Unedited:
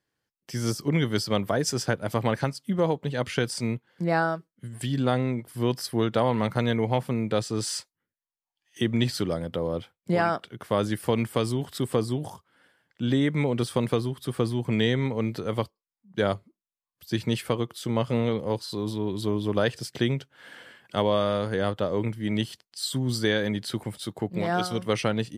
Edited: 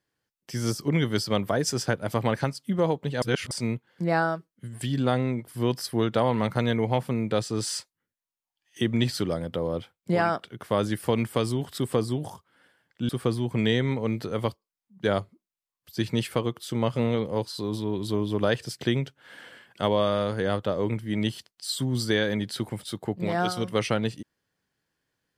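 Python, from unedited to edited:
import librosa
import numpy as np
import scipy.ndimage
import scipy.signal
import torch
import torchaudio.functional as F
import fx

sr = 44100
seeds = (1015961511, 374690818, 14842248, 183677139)

y = fx.edit(x, sr, fx.reverse_span(start_s=3.22, length_s=0.29),
    fx.cut(start_s=13.09, length_s=1.14), tone=tone)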